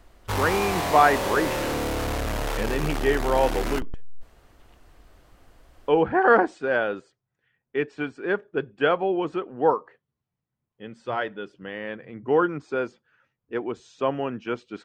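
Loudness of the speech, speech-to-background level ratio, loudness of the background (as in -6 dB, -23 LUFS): -25.0 LUFS, 3.0 dB, -28.0 LUFS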